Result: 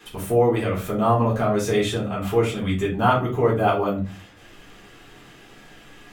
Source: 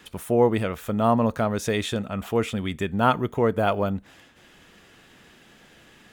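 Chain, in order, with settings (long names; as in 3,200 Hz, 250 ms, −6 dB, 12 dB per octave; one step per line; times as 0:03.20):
in parallel at −1.5 dB: downward compressor, threshold −30 dBFS, peak gain reduction 15.5 dB
on the sum: rectangular room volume 150 cubic metres, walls furnished, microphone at 3.7 metres
level −8 dB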